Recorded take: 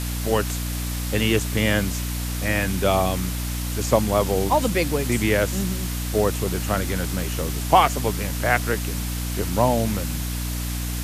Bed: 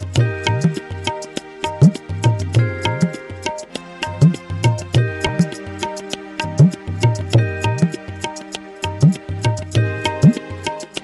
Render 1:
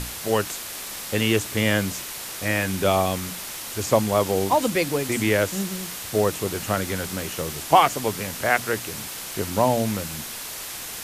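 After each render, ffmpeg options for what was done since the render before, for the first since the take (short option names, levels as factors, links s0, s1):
-af "bandreject=f=60:t=h:w=6,bandreject=f=120:t=h:w=6,bandreject=f=180:t=h:w=6,bandreject=f=240:t=h:w=6,bandreject=f=300:t=h:w=6"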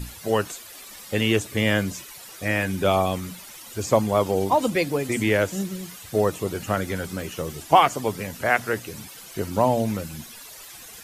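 -af "afftdn=nr=13:nf=-35"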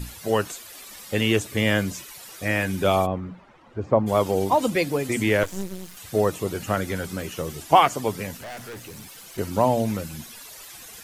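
-filter_complex "[0:a]asplit=3[s0][s1][s2];[s0]afade=t=out:st=3.05:d=0.02[s3];[s1]lowpass=1200,afade=t=in:st=3.05:d=0.02,afade=t=out:st=4.06:d=0.02[s4];[s2]afade=t=in:st=4.06:d=0.02[s5];[s3][s4][s5]amix=inputs=3:normalize=0,asettb=1/sr,asplit=3[s6][s7][s8];[s6]atrim=end=5.434[s9];[s7]atrim=start=5.43:end=5.97,asetpts=PTS-STARTPTS,afade=t=in:d=0.004:c=qsin,afade=t=out:st=0.536:d=0.004:c=qsin,aeval=exprs='max(val(0),0)':c=same[s10];[s8]atrim=start=5.966[s11];[s9][s10]acrossfade=d=0.004:c1=hsin:c2=qsin[s12];[s12][s11]acrossfade=d=0.004:c1=qsin:c2=hsin,asettb=1/sr,asplit=3[s13][s14][s15];[s13]atrim=end=8.374[s16];[s14]atrim=start=8.37:end=9.38,asetpts=PTS-STARTPTS,afade=t=in:d=0.004:c=qsin,afade=t=out:st=1.006:d=0.004:c=qsin,aeval=exprs='(tanh(56.2*val(0)+0.2)-tanh(0.2))/56.2':c=same[s17];[s15]atrim=start=9.376[s18];[s16][s17]acrossfade=d=0.004:c1=hsin:c2=qsin[s19];[s19][s18]acrossfade=d=0.004:c1=qsin:c2=hsin"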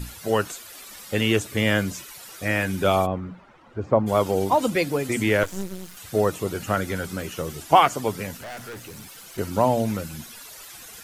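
-af "equalizer=f=1400:t=o:w=0.22:g=4"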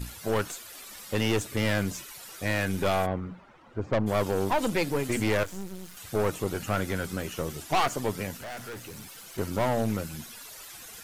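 -af "aeval=exprs='(tanh(11.2*val(0)+0.55)-tanh(0.55))/11.2':c=same"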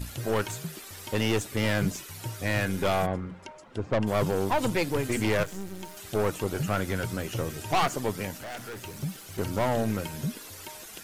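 -filter_complex "[1:a]volume=0.0841[s0];[0:a][s0]amix=inputs=2:normalize=0"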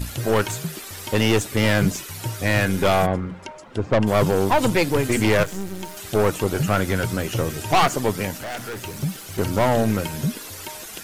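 -af "volume=2.37"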